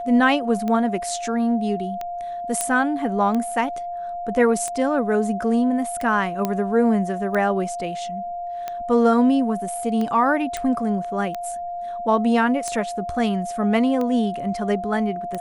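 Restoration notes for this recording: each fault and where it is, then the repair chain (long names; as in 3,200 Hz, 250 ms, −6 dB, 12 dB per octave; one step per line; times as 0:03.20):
scratch tick 45 rpm −15 dBFS
whistle 700 Hz −27 dBFS
0:02.61: click −7 dBFS
0:06.45: click −9 dBFS
0:10.57: click −13 dBFS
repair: click removal
notch filter 700 Hz, Q 30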